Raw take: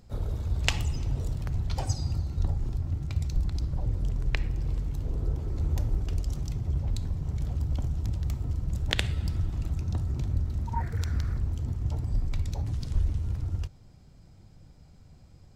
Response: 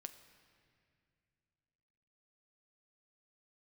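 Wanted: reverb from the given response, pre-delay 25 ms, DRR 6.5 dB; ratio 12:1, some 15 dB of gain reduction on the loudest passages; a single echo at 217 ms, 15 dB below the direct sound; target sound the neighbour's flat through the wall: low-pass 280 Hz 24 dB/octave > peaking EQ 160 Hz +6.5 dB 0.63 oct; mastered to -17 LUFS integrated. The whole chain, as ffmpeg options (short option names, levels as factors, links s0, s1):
-filter_complex "[0:a]acompressor=threshold=0.0158:ratio=12,aecho=1:1:217:0.178,asplit=2[s0][s1];[1:a]atrim=start_sample=2205,adelay=25[s2];[s1][s2]afir=irnorm=-1:irlink=0,volume=0.841[s3];[s0][s3]amix=inputs=2:normalize=0,lowpass=f=280:w=0.5412,lowpass=f=280:w=1.3066,equalizer=f=160:t=o:w=0.63:g=6.5,volume=15"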